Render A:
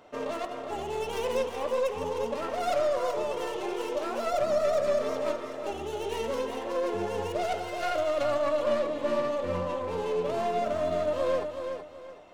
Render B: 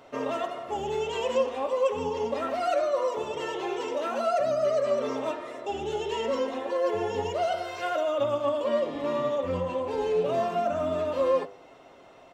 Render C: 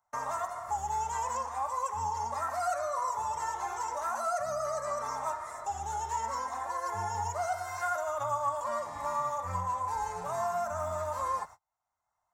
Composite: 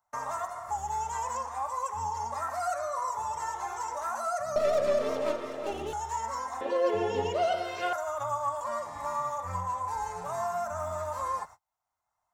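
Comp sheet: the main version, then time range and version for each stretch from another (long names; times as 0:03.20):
C
0:04.56–0:05.93: punch in from A
0:06.61–0:07.93: punch in from B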